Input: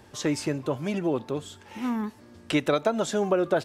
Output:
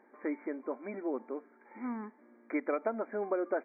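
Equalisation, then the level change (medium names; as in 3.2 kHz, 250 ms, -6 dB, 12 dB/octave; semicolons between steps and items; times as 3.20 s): brick-wall FIR band-pass 210–2400 Hz; -8.5 dB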